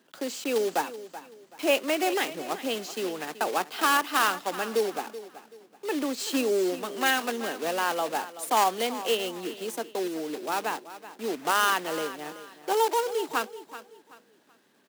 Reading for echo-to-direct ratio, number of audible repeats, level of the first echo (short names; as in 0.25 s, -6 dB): -14.0 dB, 3, -14.5 dB